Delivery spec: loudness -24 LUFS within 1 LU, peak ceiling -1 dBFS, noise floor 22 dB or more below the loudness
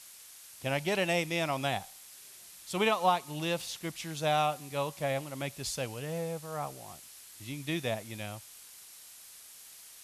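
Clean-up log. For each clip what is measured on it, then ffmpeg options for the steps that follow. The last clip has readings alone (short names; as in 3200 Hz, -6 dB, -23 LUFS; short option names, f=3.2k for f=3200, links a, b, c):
noise floor -52 dBFS; noise floor target -55 dBFS; loudness -33.0 LUFS; peak -14.0 dBFS; loudness target -24.0 LUFS
-> -af "afftdn=nr=6:nf=-52"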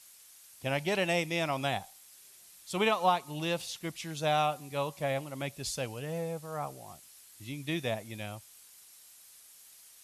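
noise floor -56 dBFS; loudness -33.0 LUFS; peak -14.0 dBFS; loudness target -24.0 LUFS
-> -af "volume=9dB"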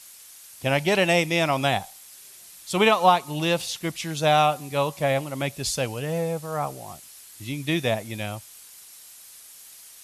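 loudness -24.0 LUFS; peak -5.0 dBFS; noise floor -47 dBFS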